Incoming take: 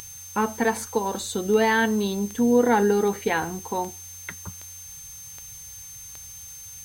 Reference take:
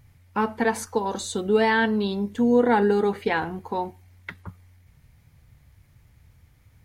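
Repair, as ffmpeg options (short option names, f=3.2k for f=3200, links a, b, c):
-af "adeclick=t=4,bandreject=f=6.3k:w=30,afftdn=nr=15:nf=-41"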